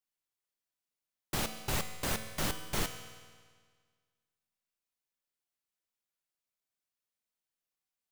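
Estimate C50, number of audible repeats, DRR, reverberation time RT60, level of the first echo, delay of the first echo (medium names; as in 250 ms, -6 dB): 9.0 dB, no echo, 7.0 dB, 1.7 s, no echo, no echo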